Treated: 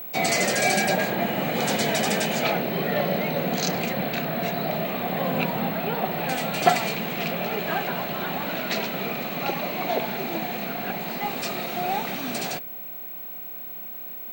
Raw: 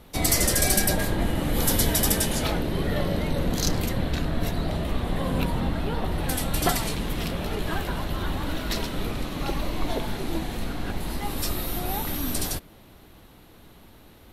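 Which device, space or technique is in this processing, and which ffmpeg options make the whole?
old television with a line whistle: -af "highpass=f=170:w=0.5412,highpass=f=170:w=1.3066,equalizer=f=300:t=q:w=4:g=-9,equalizer=f=720:t=q:w=4:g=7,equalizer=f=1k:t=q:w=4:g=-4,equalizer=f=2.4k:t=q:w=4:g=7,equalizer=f=3.4k:t=q:w=4:g=-4,equalizer=f=5.4k:t=q:w=4:g=-7,lowpass=f=6.8k:w=0.5412,lowpass=f=6.8k:w=1.3066,aeval=exprs='val(0)+0.0141*sin(2*PI*15734*n/s)':c=same,volume=3.5dB"

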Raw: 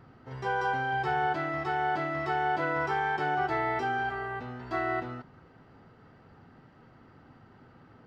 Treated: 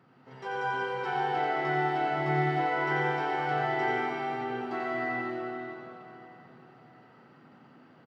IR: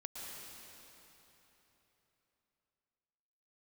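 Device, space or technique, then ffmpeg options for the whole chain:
PA in a hall: -filter_complex "[0:a]highpass=f=140:w=0.5412,highpass=f=140:w=1.3066,equalizer=f=2.7k:t=o:w=0.77:g=3.5,aecho=1:1:89:0.631[a];[1:a]atrim=start_sample=2205[b];[a][b]afir=irnorm=-1:irlink=0,asettb=1/sr,asplit=3[c][d][e];[c]atrim=end=2.014[f];[d]atrim=start=2.01:end=2.66,asetpts=PTS-STARTPTS,afade=t=in:d=0.004:c=qsin,afade=t=out:st=0.646:d=0.004:c=qsin,lowshelf=f=160:g=11[g];[e]atrim=start=2.656[h];[f][g]acrossfade=d=0.004:c1=hsin:c2=qsin[i];[i][h]acrossfade=d=0.004:c1=qsin:c2=hsin"

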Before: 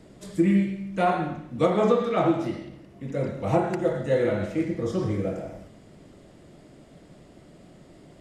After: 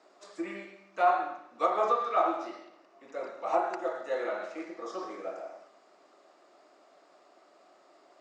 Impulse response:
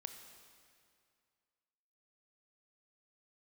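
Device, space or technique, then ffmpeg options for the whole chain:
phone speaker on a table: -af "highpass=f=430:w=0.5412,highpass=f=430:w=1.3066,equalizer=f=480:t=q:w=4:g=-8,equalizer=f=740:t=q:w=4:g=4,equalizer=f=1.2k:t=q:w=4:g=8,equalizer=f=2k:t=q:w=4:g=-4,equalizer=f=3.2k:t=q:w=4:g=-7,lowpass=f=6.6k:w=0.5412,lowpass=f=6.6k:w=1.3066,volume=-3.5dB"

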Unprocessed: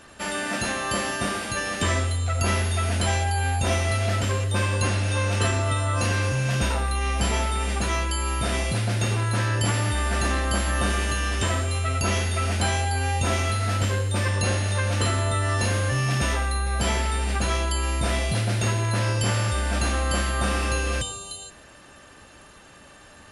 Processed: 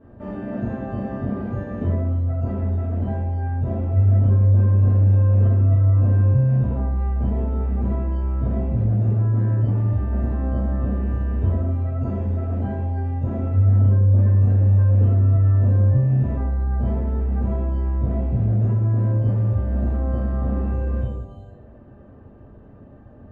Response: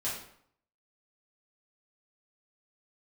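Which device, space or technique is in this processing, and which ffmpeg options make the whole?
television next door: -filter_complex "[0:a]acompressor=threshold=-25dB:ratio=6,lowpass=390[a];[1:a]atrim=start_sample=2205[b];[a][b]afir=irnorm=-1:irlink=0,volume=4.5dB"

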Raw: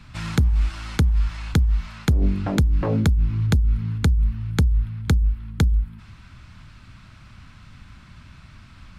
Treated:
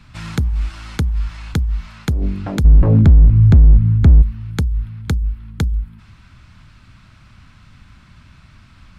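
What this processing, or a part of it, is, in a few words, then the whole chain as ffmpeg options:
limiter into clipper: -filter_complex "[0:a]asplit=3[a][b][c];[a]afade=t=out:st=2.64:d=0.02[d];[b]aemphasis=mode=reproduction:type=riaa,afade=t=in:st=2.64:d=0.02,afade=t=out:st=4.21:d=0.02[e];[c]afade=t=in:st=4.21:d=0.02[f];[d][e][f]amix=inputs=3:normalize=0,alimiter=limit=-1dB:level=0:latency=1:release=19,asoftclip=type=hard:threshold=-3.5dB"

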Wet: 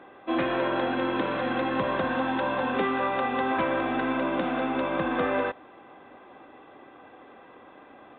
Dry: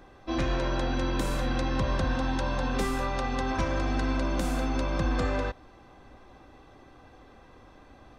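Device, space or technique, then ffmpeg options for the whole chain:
telephone: -af "highpass=270,lowpass=3.2k,volume=5.5dB" -ar 8000 -c:a pcm_mulaw

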